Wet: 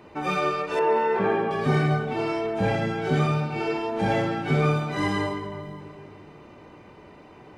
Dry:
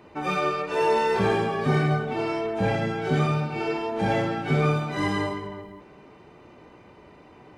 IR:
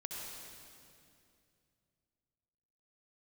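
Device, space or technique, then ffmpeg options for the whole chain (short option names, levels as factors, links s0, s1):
ducked reverb: -filter_complex "[0:a]asplit=3[s0][s1][s2];[1:a]atrim=start_sample=2205[s3];[s1][s3]afir=irnorm=-1:irlink=0[s4];[s2]apad=whole_len=334025[s5];[s4][s5]sidechaincompress=threshold=0.0126:ratio=8:attack=16:release=235,volume=0.376[s6];[s0][s6]amix=inputs=2:normalize=0,asettb=1/sr,asplit=3[s7][s8][s9];[s7]atrim=end=0.794[s10];[s8]atrim=start=0.79:end=1.51,asetpts=PTS-STARTPTS,afade=t=in:d=0.004:c=qsin,afade=t=out:st=0.716:d=0.004:c=qsin,acrossover=split=150 2600:gain=0.0708 1 0.1[s11][s12][s13];[s11][s12][s13]amix=inputs=3:normalize=0[s14];[s9]atrim=start=1.506[s15];[s10][s14]acrossfade=d=0.004:c1=hsin:c2=qsin[s16];[s16][s15]acrossfade=d=0.004:c1=qsin:c2=hsin"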